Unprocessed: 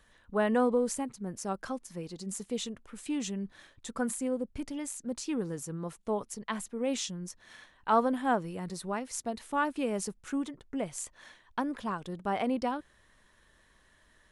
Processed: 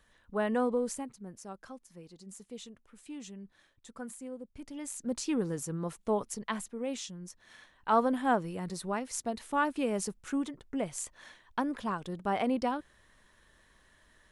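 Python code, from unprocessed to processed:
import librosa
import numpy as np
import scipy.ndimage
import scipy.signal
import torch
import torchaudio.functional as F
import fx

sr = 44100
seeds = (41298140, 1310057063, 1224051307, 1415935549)

y = fx.gain(x, sr, db=fx.line((0.87, -3.0), (1.52, -10.5), (4.52, -10.5), (5.05, 2.0), (6.37, 2.0), (7.01, -6.0), (8.16, 0.5)))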